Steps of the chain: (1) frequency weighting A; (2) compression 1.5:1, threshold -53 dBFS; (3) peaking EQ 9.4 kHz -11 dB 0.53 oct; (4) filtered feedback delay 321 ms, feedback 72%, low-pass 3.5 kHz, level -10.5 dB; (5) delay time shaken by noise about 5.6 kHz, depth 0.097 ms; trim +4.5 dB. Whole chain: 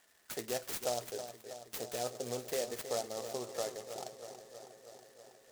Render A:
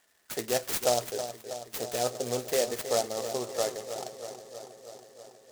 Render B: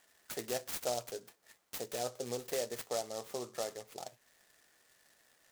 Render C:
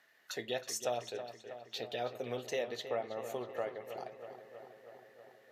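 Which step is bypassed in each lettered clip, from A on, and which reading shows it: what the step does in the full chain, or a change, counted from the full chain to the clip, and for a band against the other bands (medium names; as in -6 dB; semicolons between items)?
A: 2, mean gain reduction 7.0 dB; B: 4, momentary loudness spread change -6 LU; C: 5, 8 kHz band -4.5 dB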